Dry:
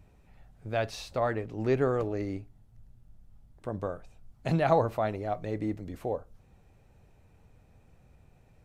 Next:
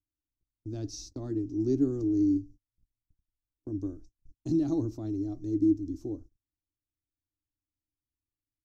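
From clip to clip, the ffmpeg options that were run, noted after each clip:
ffmpeg -i in.wav -af "firequalizer=gain_entry='entry(110,0);entry(190,-13);entry(300,14);entry(480,-21);entry(2200,-29);entry(5700,7);entry(8900,-12)':delay=0.05:min_phase=1,agate=range=-37dB:threshold=-46dB:ratio=16:detection=peak" out.wav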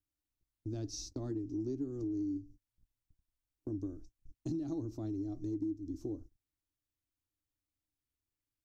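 ffmpeg -i in.wav -af "acompressor=threshold=-35dB:ratio=6" out.wav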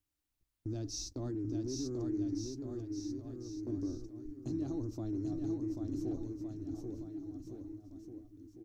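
ffmpeg -i in.wav -af "alimiter=level_in=11dB:limit=-24dB:level=0:latency=1:release=15,volume=-11dB,aeval=exprs='0.0188*(cos(1*acos(clip(val(0)/0.0188,-1,1)))-cos(1*PI/2))+0.000119*(cos(8*acos(clip(val(0)/0.0188,-1,1)))-cos(8*PI/2))':channel_layout=same,aecho=1:1:790|1462|2032|2517|2930:0.631|0.398|0.251|0.158|0.1,volume=3.5dB" out.wav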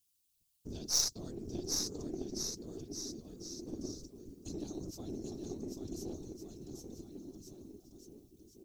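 ffmpeg -i in.wav -af "afftfilt=real='hypot(re,im)*cos(2*PI*random(0))':imag='hypot(re,im)*sin(2*PI*random(1))':win_size=512:overlap=0.75,aexciter=amount=6.2:drive=3.3:freq=2700,aeval=exprs='0.112*(cos(1*acos(clip(val(0)/0.112,-1,1)))-cos(1*PI/2))+0.0158*(cos(3*acos(clip(val(0)/0.112,-1,1)))-cos(3*PI/2))+0.00562*(cos(6*acos(clip(val(0)/0.112,-1,1)))-cos(6*PI/2))':channel_layout=same,volume=5dB" out.wav

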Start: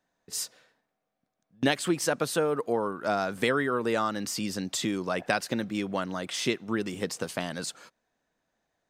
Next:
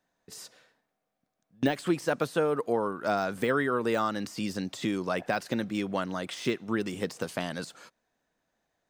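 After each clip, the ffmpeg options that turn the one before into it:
ffmpeg -i in.wav -af "deesser=0.9" out.wav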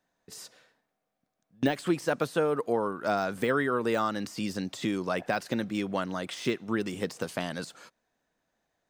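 ffmpeg -i in.wav -af anull out.wav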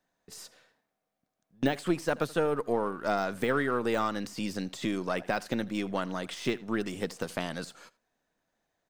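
ffmpeg -i in.wav -af "aeval=exprs='if(lt(val(0),0),0.708*val(0),val(0))':channel_layout=same,aecho=1:1:81:0.0841" out.wav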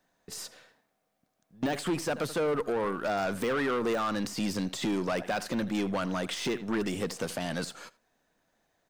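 ffmpeg -i in.wav -af "alimiter=limit=-19dB:level=0:latency=1:release=56,asoftclip=type=tanh:threshold=-30dB,volume=6dB" out.wav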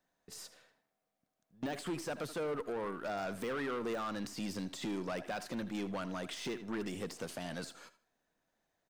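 ffmpeg -i in.wav -af "aecho=1:1:78|156|234:0.141|0.0438|0.0136,volume=-8.5dB" out.wav

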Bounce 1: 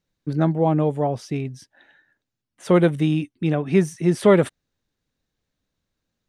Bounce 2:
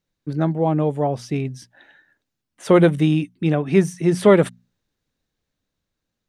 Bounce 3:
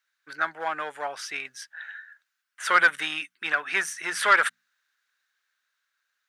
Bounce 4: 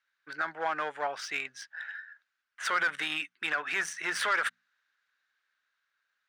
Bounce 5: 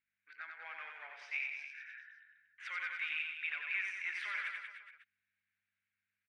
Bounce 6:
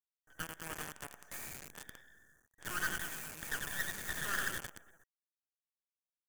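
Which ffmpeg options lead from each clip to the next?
ffmpeg -i in.wav -af "bandreject=frequency=60:width_type=h:width=6,bandreject=frequency=120:width_type=h:width=6,bandreject=frequency=180:width_type=h:width=6,bandreject=frequency=240:width_type=h:width=6,dynaudnorm=framelen=370:gausssize=7:maxgain=11.5dB,volume=-1dB" out.wav
ffmpeg -i in.wav -filter_complex "[0:a]asplit=2[link_01][link_02];[link_02]asoftclip=type=hard:threshold=-13dB,volume=-6.5dB[link_03];[link_01][link_03]amix=inputs=2:normalize=0,highpass=frequency=1500:width_type=q:width=4.1,asoftclip=type=tanh:threshold=-6.5dB,volume=-1dB" out.wav
ffmpeg -i in.wav -af "alimiter=limit=-19.5dB:level=0:latency=1:release=46,adynamicsmooth=sensitivity=5:basefreq=4900" out.wav
ffmpeg -i in.wav -filter_complex "[0:a]aeval=exprs='val(0)+0.00112*(sin(2*PI*50*n/s)+sin(2*PI*2*50*n/s)/2+sin(2*PI*3*50*n/s)/3+sin(2*PI*4*50*n/s)/4+sin(2*PI*5*50*n/s)/5)':channel_layout=same,bandpass=frequency=2300:width_type=q:width=5.2:csg=0,asplit=2[link_01][link_02];[link_02]aecho=0:1:90|189|297.9|417.7|549.5:0.631|0.398|0.251|0.158|0.1[link_03];[link_01][link_03]amix=inputs=2:normalize=0,volume=-2.5dB" out.wav
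ffmpeg -i in.wav -af "acrusher=bits=8:dc=4:mix=0:aa=0.000001,afftfilt=real='re*(1-between(b*sr/4096,1900,5800))':imag='im*(1-between(b*sr/4096,1900,5800))':win_size=4096:overlap=0.75,aeval=exprs='0.0299*(cos(1*acos(clip(val(0)/0.0299,-1,1)))-cos(1*PI/2))+0.00596*(cos(3*acos(clip(val(0)/0.0299,-1,1)))-cos(3*PI/2))+0.00237*(cos(8*acos(clip(val(0)/0.0299,-1,1)))-cos(8*PI/2))':channel_layout=same,volume=11dB" out.wav

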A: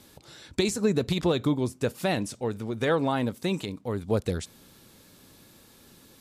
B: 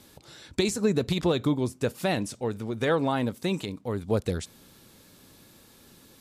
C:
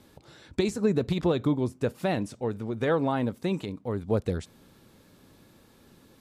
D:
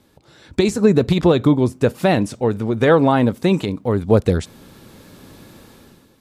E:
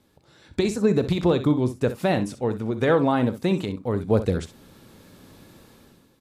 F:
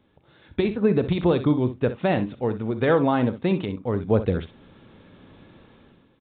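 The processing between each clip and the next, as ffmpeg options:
ffmpeg -i in.wav -af anull out.wav
ffmpeg -i in.wav -af "highshelf=frequency=2800:gain=-10" out.wav
ffmpeg -i in.wav -af "dynaudnorm=framelen=110:gausssize=9:maxgain=13.5dB" out.wav
ffmpeg -i in.wav -af "aecho=1:1:40|63:0.141|0.237,volume=-6.5dB" out.wav
ffmpeg -i in.wav -af "aresample=8000,aresample=44100" out.wav

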